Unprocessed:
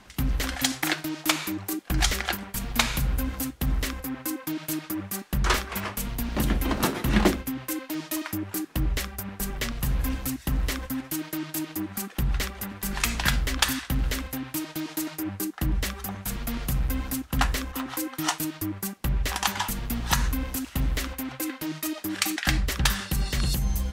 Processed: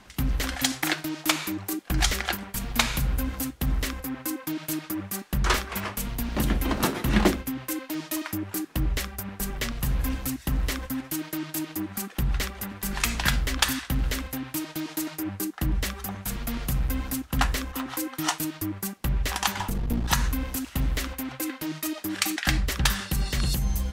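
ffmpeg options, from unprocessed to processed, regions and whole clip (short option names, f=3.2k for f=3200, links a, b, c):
-filter_complex "[0:a]asettb=1/sr,asplit=3[a][b][c];[a]atrim=end=19.594[d];[b]atrim=start=19.59:end=20.08,asetpts=PTS-STARTPTS,afade=t=in:d=0.004:c=qsin,afade=t=out:st=0.486:d=0.004:c=qsin,tiltshelf=f=800:g=6.5,aeval=exprs='clip(val(0),-1,0.0398)':c=same[e];[c]atrim=start=20.076[f];[d][e]acrossfade=d=0.004:c1=hsin:c2=qsin[g];[g][f]acrossfade=d=0.004:c1=qsin:c2=hsin"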